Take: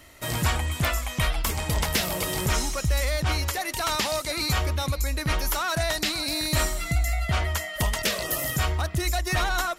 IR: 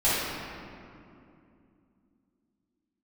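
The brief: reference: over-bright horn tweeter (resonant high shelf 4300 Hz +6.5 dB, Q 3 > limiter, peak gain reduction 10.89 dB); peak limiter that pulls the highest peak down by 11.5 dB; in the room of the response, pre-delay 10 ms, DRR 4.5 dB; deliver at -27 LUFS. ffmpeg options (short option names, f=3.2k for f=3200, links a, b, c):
-filter_complex "[0:a]alimiter=limit=-23.5dB:level=0:latency=1,asplit=2[a][b];[1:a]atrim=start_sample=2205,adelay=10[c];[b][c]afir=irnorm=-1:irlink=0,volume=-20dB[d];[a][d]amix=inputs=2:normalize=0,highshelf=f=4.3k:t=q:w=3:g=6.5,volume=6dB,alimiter=limit=-18.5dB:level=0:latency=1"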